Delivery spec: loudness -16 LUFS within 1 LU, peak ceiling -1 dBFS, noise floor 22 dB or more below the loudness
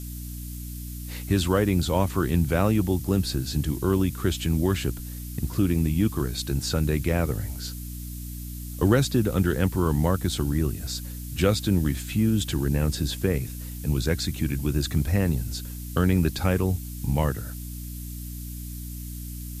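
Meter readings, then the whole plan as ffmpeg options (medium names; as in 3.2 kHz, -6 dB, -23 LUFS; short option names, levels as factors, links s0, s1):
hum 60 Hz; highest harmonic 300 Hz; hum level -33 dBFS; noise floor -36 dBFS; noise floor target -48 dBFS; loudness -25.5 LUFS; peak level -7.0 dBFS; loudness target -16.0 LUFS
-> -af "bandreject=f=60:t=h:w=4,bandreject=f=120:t=h:w=4,bandreject=f=180:t=h:w=4,bandreject=f=240:t=h:w=4,bandreject=f=300:t=h:w=4"
-af "afftdn=nr=12:nf=-36"
-af "volume=2.99,alimiter=limit=0.891:level=0:latency=1"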